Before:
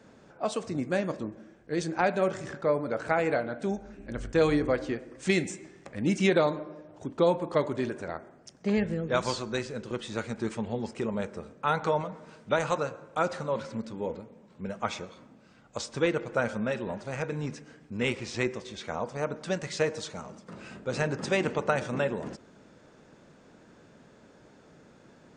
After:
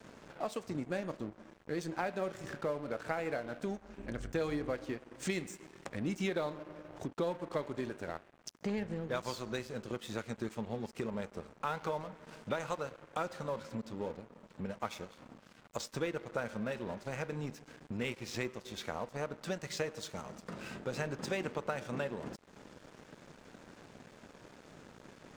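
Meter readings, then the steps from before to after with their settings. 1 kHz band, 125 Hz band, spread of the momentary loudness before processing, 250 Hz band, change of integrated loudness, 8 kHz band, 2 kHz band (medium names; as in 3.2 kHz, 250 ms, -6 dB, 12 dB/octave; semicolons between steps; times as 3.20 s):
-8.5 dB, -8.0 dB, 14 LU, -8.5 dB, -9.0 dB, -6.0 dB, -8.5 dB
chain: compression 2.5:1, threshold -48 dBFS, peak gain reduction 19 dB; crossover distortion -57 dBFS; trim +7.5 dB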